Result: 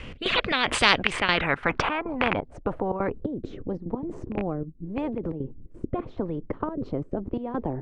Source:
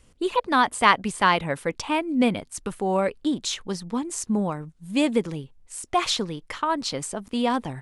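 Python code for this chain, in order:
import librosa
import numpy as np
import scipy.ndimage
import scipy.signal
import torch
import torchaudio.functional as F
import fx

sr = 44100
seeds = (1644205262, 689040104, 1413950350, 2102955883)

y = fx.rattle_buzz(x, sr, strikes_db=-26.0, level_db=-9.0)
y = fx.rotary(y, sr, hz=0.9)
y = fx.step_gate(y, sr, bpm=175, pattern='xx.xxx..xxxx.x.x', floor_db=-12.0, edge_ms=4.5)
y = fx.filter_sweep_lowpass(y, sr, from_hz=2600.0, to_hz=310.0, start_s=1.0, end_s=3.34, q=2.3)
y = fx.spectral_comp(y, sr, ratio=4.0)
y = F.gain(torch.from_numpy(y), -1.5).numpy()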